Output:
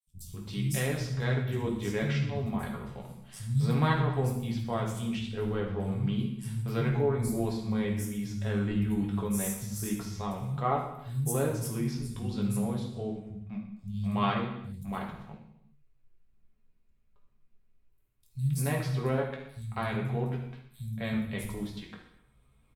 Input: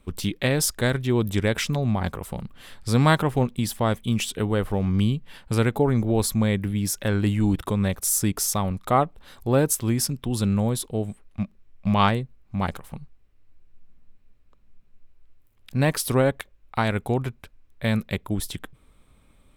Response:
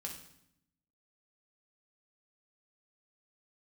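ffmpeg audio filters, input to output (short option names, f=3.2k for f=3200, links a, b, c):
-filter_complex "[0:a]atempo=0.86,acrossover=split=160|5600[a][b][c];[a]adelay=70[d];[b]adelay=270[e];[d][e][c]amix=inputs=3:normalize=0[f];[1:a]atrim=start_sample=2205,afade=t=out:st=0.38:d=0.01,atrim=end_sample=17199,asetrate=36162,aresample=44100[g];[f][g]afir=irnorm=-1:irlink=0,adynamicequalizer=threshold=0.00708:dfrequency=4200:dqfactor=0.7:tfrequency=4200:tqfactor=0.7:attack=5:release=100:ratio=0.375:range=3:mode=cutabove:tftype=highshelf,volume=-7.5dB"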